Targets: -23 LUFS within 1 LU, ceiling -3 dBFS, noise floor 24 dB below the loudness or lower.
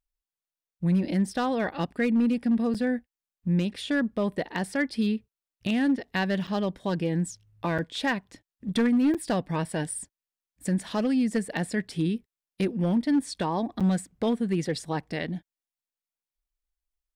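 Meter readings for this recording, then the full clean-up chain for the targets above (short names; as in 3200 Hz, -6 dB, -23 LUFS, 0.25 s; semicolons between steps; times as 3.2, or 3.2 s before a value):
clipped 0.9%; flat tops at -18.0 dBFS; dropouts 5; longest dropout 6.5 ms; loudness -28.0 LUFS; peak -18.0 dBFS; loudness target -23.0 LUFS
-> clip repair -18 dBFS; interpolate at 2.74/6.47/7.78/9.14/13.8, 6.5 ms; gain +5 dB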